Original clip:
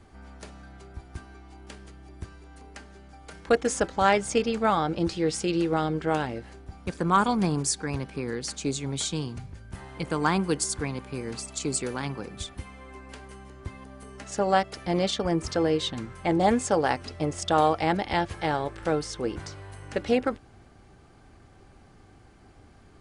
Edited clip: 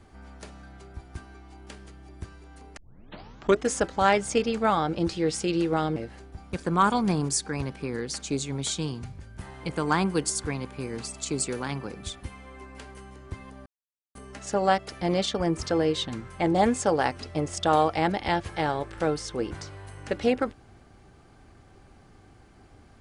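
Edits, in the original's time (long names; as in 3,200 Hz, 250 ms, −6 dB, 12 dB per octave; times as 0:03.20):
0:02.77: tape start 0.89 s
0:05.96–0:06.30: remove
0:14.00: splice in silence 0.49 s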